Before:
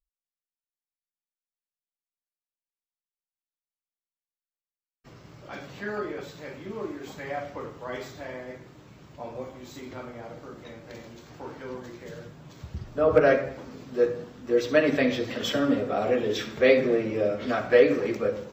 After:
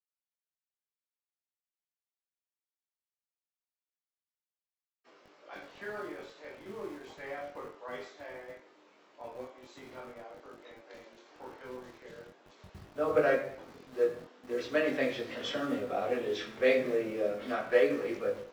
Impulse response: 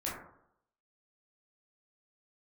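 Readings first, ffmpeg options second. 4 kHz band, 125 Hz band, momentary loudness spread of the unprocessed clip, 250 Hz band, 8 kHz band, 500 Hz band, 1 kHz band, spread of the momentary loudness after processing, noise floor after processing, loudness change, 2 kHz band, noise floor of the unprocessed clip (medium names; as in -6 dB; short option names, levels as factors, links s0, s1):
-7.0 dB, -13.5 dB, 22 LU, -9.5 dB, no reading, -7.0 dB, -6.0 dB, 22 LU, under -85 dBFS, -7.5 dB, -6.0 dB, under -85 dBFS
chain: -filter_complex "[0:a]lowpass=6500,bass=f=250:g=-8,treble=f=4000:g=-3,acrossover=split=270|480|2400[s0][s1][s2][s3];[s0]acrusher=bits=7:mix=0:aa=0.000001[s4];[s4][s1][s2][s3]amix=inputs=4:normalize=0,flanger=delay=20:depth=4.1:speed=0.38,volume=0.708"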